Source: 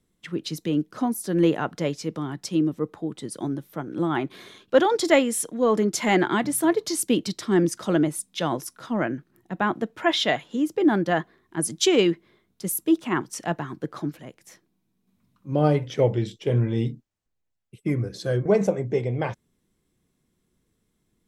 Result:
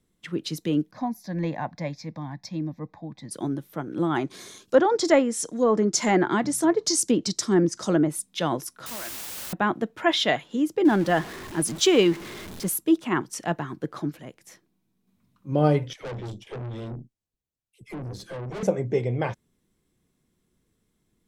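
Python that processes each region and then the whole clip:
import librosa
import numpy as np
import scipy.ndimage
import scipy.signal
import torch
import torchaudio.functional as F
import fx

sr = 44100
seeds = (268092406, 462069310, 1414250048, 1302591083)

y = fx.chain(x, sr, fx.lowpass(hz=3700.0, slope=6),
    fx.fixed_phaser(hz=2000.0, stages=8), at=(0.91, 3.31))
y = fx.chain(y, sr, fx.env_lowpass_down(base_hz=2100.0, full_db=-16.5),
    fx.high_shelf_res(hz=4400.0, db=11.0, q=1.5), at=(4.16, 8.1))
y = fx.chain(y, sr, fx.highpass(hz=1300.0, slope=6),
    fx.level_steps(step_db=13),
    fx.quant_dither(seeds[0], bits=6, dither='triangular'), at=(8.86, 9.53))
y = fx.chain(y, sr, fx.zero_step(step_db=-33.0),
    fx.high_shelf(hz=12000.0, db=-4.5), at=(10.85, 12.78))
y = fx.chain(y, sr, fx.peak_eq(hz=1400.0, db=-6.0, octaves=2.3),
    fx.dispersion(late='lows', ms=81.0, hz=680.0),
    fx.tube_stage(drive_db=32.0, bias=0.6), at=(15.93, 18.63))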